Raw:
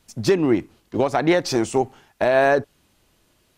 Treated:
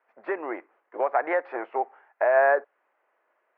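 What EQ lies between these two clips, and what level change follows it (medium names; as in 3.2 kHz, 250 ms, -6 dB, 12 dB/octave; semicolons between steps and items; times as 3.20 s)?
high-pass 530 Hz 24 dB/octave; steep low-pass 2 kHz 36 dB/octave; -1.5 dB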